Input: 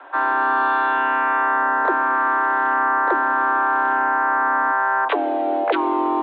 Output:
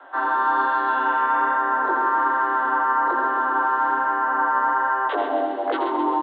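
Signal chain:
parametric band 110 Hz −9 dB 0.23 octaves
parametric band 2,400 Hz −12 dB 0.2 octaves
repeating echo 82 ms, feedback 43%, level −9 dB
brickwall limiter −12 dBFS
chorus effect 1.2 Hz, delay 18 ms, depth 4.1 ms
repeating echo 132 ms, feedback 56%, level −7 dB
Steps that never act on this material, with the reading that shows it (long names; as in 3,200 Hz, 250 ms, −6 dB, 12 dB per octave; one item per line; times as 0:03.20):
parametric band 110 Hz: nothing at its input below 230 Hz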